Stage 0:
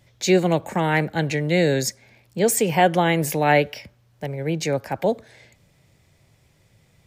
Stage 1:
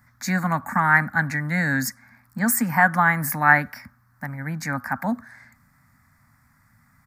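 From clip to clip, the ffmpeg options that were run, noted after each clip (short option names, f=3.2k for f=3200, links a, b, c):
-af "firequalizer=gain_entry='entry(170,0);entry(250,10);entry(370,-25);entry(740,0);entry(1200,15);entry(1800,11);entry(2900,-21);entry(4600,-3);entry(6500,-3);entry(13000,8)':delay=0.05:min_phase=1,volume=-2.5dB"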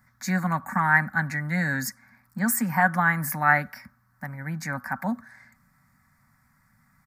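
-af "aecho=1:1:5.3:0.34,volume=-4dB"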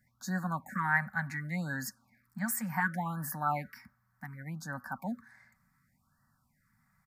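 -af "afftfilt=real='re*(1-between(b*sr/1024,320*pow(2800/320,0.5+0.5*sin(2*PI*0.68*pts/sr))/1.41,320*pow(2800/320,0.5+0.5*sin(2*PI*0.68*pts/sr))*1.41))':imag='im*(1-between(b*sr/1024,320*pow(2800/320,0.5+0.5*sin(2*PI*0.68*pts/sr))/1.41,320*pow(2800/320,0.5+0.5*sin(2*PI*0.68*pts/sr))*1.41))':win_size=1024:overlap=0.75,volume=-8.5dB"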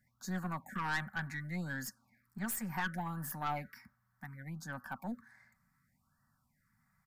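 -af "aeval=exprs='(tanh(22.4*val(0)+0.4)-tanh(0.4))/22.4':c=same,volume=-2dB"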